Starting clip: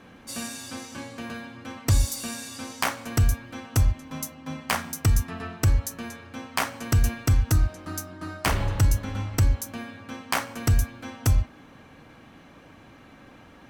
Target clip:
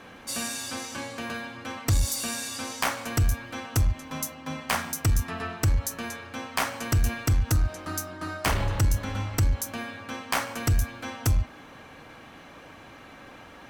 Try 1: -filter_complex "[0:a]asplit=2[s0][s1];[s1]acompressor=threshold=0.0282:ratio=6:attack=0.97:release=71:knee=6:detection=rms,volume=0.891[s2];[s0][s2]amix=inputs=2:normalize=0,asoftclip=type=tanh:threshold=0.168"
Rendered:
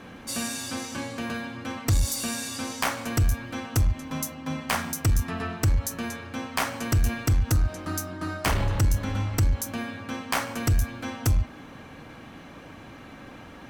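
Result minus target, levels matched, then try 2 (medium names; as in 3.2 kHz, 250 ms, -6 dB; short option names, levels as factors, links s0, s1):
250 Hz band +2.5 dB
-filter_complex "[0:a]asplit=2[s0][s1];[s1]acompressor=threshold=0.0282:ratio=6:attack=0.97:release=71:knee=6:detection=rms,highpass=340,volume=0.891[s2];[s0][s2]amix=inputs=2:normalize=0,asoftclip=type=tanh:threshold=0.168"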